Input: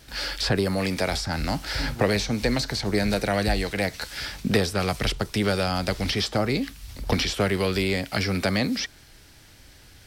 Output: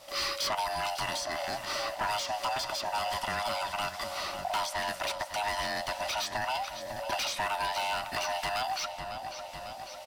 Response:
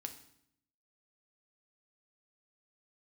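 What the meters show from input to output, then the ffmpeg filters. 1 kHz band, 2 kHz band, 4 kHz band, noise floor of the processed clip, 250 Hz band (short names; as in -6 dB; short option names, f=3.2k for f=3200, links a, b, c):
+2.0 dB, -5.5 dB, -5.0 dB, -43 dBFS, -22.5 dB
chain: -filter_complex "[0:a]afftfilt=real='real(if(lt(b,1008),b+24*(1-2*mod(floor(b/24),2)),b),0)':imag='imag(if(lt(b,1008),b+24*(1-2*mod(floor(b/24),2)),b),0)':win_size=2048:overlap=0.75,lowshelf=f=280:g=-4.5,aecho=1:1:550|1100|1650|2200|2750|3300:0.224|0.123|0.0677|0.0372|0.0205|0.0113,acrossover=split=1000[a][b];[a]acompressor=threshold=-38dB:ratio=6[c];[c][b]amix=inputs=2:normalize=0,asoftclip=type=hard:threshold=-25dB,areverse,acompressor=mode=upward:threshold=-52dB:ratio=2.5,areverse,adynamicequalizer=threshold=0.00631:dfrequency=2000:dqfactor=0.7:tfrequency=2000:tqfactor=0.7:attack=5:release=100:ratio=0.375:range=2.5:mode=cutabove:tftype=highshelf"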